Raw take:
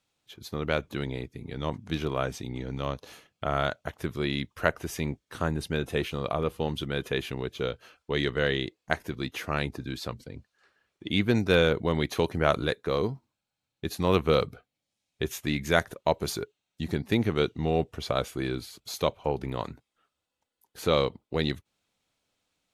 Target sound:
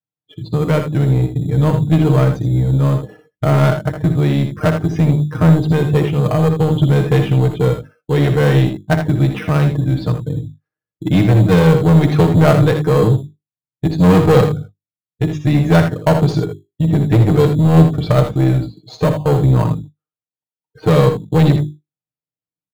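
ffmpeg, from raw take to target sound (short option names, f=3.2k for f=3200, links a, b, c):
-filter_complex "[0:a]highpass=56,aemphasis=mode=reproduction:type=75fm,bandreject=f=50:t=h:w=6,bandreject=f=100:t=h:w=6,bandreject=f=150:t=h:w=6,bandreject=f=200:t=h:w=6,bandreject=f=250:t=h:w=6,bandreject=f=300:t=h:w=6,bandreject=f=350:t=h:w=6,bandreject=f=400:t=h:w=6,afftdn=nr=35:nf=-46,equalizer=f=100:t=o:w=2.6:g=13.5,aecho=1:1:6.5:0.84,asplit=2[a][b];[b]acrusher=samples=12:mix=1:aa=0.000001,volume=-10dB[c];[a][c]amix=inputs=2:normalize=0,acontrast=87,tremolo=f=0.56:d=0.32,acontrast=59,asplit=2[d][e];[e]aecho=0:1:61|80:0.316|0.335[f];[d][f]amix=inputs=2:normalize=0,volume=-4.5dB"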